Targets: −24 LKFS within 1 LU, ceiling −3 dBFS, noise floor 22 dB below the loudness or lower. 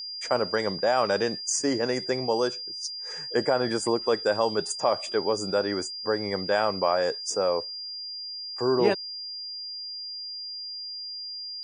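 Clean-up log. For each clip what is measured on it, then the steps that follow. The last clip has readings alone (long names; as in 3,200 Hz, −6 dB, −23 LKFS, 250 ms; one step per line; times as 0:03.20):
interfering tone 4,800 Hz; level of the tone −34 dBFS; integrated loudness −27.5 LKFS; sample peak −9.5 dBFS; target loudness −24.0 LKFS
→ notch filter 4,800 Hz, Q 30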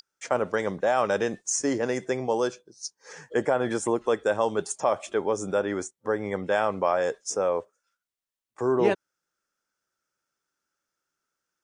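interfering tone none found; integrated loudness −27.0 LKFS; sample peak −9.5 dBFS; target loudness −24.0 LKFS
→ level +3 dB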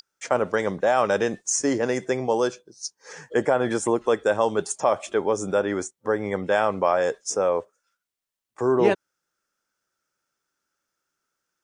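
integrated loudness −24.0 LKFS; sample peak −6.5 dBFS; background noise floor −84 dBFS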